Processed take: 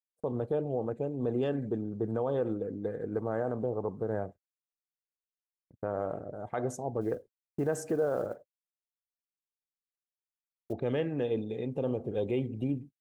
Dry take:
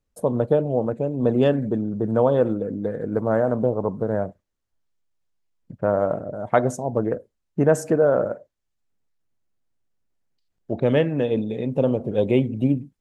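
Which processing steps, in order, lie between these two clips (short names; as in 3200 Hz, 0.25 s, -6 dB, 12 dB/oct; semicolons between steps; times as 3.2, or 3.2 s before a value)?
7.01–10.73 block floating point 7-bit; limiter -12.5 dBFS, peak gain reduction 9 dB; comb 2.5 ms, depth 31%; gate -37 dBFS, range -43 dB; gain -8.5 dB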